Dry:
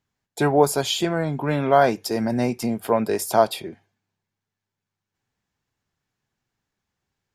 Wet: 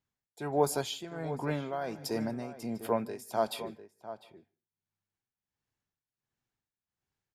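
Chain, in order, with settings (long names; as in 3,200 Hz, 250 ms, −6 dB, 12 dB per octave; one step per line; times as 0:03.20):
slap from a distant wall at 120 metres, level −12 dB
on a send at −22 dB: convolution reverb RT60 0.40 s, pre-delay 143 ms
on the sum: amplitude tremolo 1.4 Hz, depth 75%
level −8.5 dB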